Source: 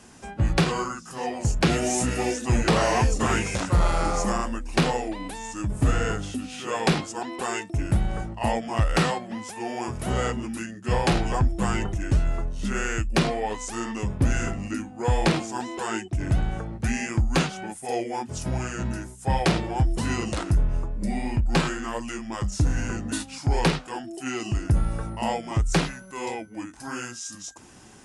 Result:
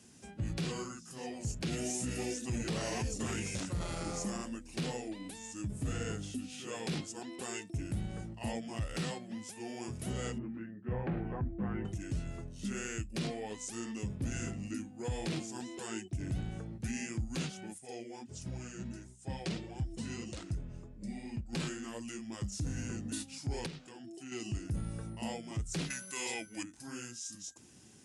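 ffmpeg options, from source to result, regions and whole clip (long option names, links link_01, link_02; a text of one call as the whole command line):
ffmpeg -i in.wav -filter_complex "[0:a]asettb=1/sr,asplit=3[link_01][link_02][link_03];[link_01]atrim=end=10.384[link_04];[link_02]atrim=start=10.38:end=11.85,asetpts=PTS-STARTPTS,afade=type=in:duration=0.004:curve=qsin,afade=type=out:start_time=1.466:duration=0.004:curve=qsin,lowpass=frequency=1800:width=0.5412,lowpass=frequency=1800:width=1.3066,asplit=2[link_05][link_06];[link_06]adelay=24,volume=-12.5dB[link_07];[link_05][link_07]amix=inputs=2:normalize=0,atrim=end_sample=64827[link_08];[link_03]atrim=start=11.846[link_09];[link_04][link_08]acrossfade=duration=0.004:curve1=hsin:curve2=qsin[link_10];[link_10][link_09]acrossfade=duration=0.004:curve1=qsin:curve2=hsin,asettb=1/sr,asplit=3[link_11][link_12][link_13];[link_11]atrim=end=17.784[link_14];[link_12]atrim=start=17.78:end=21.53,asetpts=PTS-STARTPTS,afade=type=in:duration=0.004:curve=qsin,afade=type=out:start_time=3.746:duration=0.004:curve=qsin,lowpass=frequency=8700:width=0.5412,lowpass=frequency=8700:width=1.3066,flanger=delay=0.4:depth=5.5:regen=54:speed=1.5:shape=triangular[link_15];[link_13]atrim=start=21.526[link_16];[link_14][link_15]acrossfade=duration=0.004:curve1=hsin:curve2=qsin[link_17];[link_17][link_16]acrossfade=duration=0.004:curve1=qsin:curve2=hsin,asettb=1/sr,asplit=3[link_18][link_19][link_20];[link_18]atrim=end=23.664[link_21];[link_19]atrim=start=23.66:end=24.32,asetpts=PTS-STARTPTS,afade=type=in:duration=0.004:curve=qsin,afade=type=out:start_time=0.656:duration=0.004:curve=qsin,acompressor=threshold=-35dB:ratio=3:attack=3.2:release=140:knee=1:detection=peak,lowpass=7600[link_22];[link_20]atrim=start=24.316[link_23];[link_21][link_22]acrossfade=duration=0.004:curve1=hsin:curve2=qsin[link_24];[link_24][link_23]acrossfade=duration=0.004:curve1=qsin:curve2=hsin,asettb=1/sr,asplit=3[link_25][link_26][link_27];[link_25]atrim=end=25.904[link_28];[link_26]atrim=start=25.9:end=26.63,asetpts=PTS-STARTPTS,afade=type=in:duration=0.004:curve=qsin,afade=type=out:start_time=0.726:duration=0.004:curve=qsin,tiltshelf=frequency=770:gain=-8,acontrast=80[link_29];[link_27]atrim=start=26.626[link_30];[link_28][link_29]acrossfade=duration=0.004:curve1=hsin:curve2=qsin[link_31];[link_31][link_30]acrossfade=duration=0.004:curve1=qsin:curve2=hsin,highpass=89,equalizer=frequency=1000:width_type=o:width=2.1:gain=-12.5,alimiter=limit=-21.5dB:level=0:latency=1:release=16,volume=-6dB" out.wav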